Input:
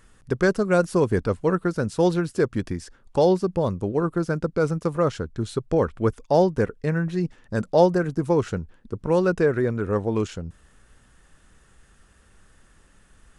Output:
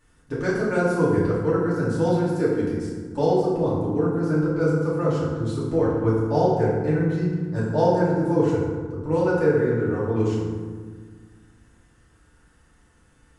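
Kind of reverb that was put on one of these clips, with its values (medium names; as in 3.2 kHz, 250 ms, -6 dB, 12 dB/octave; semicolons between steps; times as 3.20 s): FDN reverb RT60 1.6 s, low-frequency decay 1.45×, high-frequency decay 0.5×, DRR -9.5 dB; trim -11.5 dB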